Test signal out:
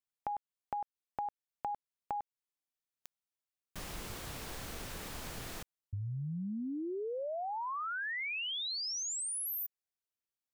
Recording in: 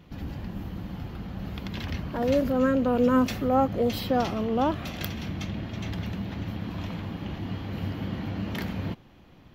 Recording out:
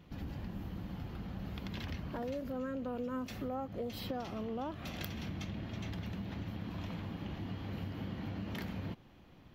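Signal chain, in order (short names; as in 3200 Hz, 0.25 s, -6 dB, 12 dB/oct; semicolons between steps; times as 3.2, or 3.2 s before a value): compressor 6:1, threshold -31 dBFS; gain -5.5 dB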